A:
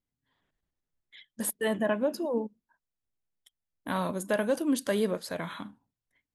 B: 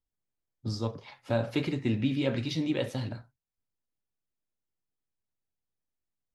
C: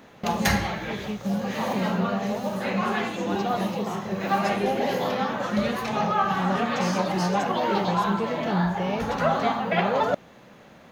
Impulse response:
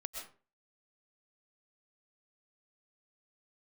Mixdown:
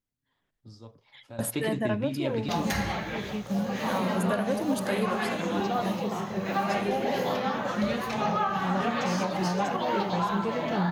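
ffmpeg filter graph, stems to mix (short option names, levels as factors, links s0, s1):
-filter_complex "[0:a]volume=0.891,asplit=2[s0][s1];[1:a]volume=0.841[s2];[2:a]adelay=2250,volume=0.794[s3];[s1]apad=whole_len=279631[s4];[s2][s4]sidechaingate=range=0.2:threshold=0.00178:ratio=16:detection=peak[s5];[s0][s5][s3]amix=inputs=3:normalize=0,alimiter=limit=0.141:level=0:latency=1:release=189"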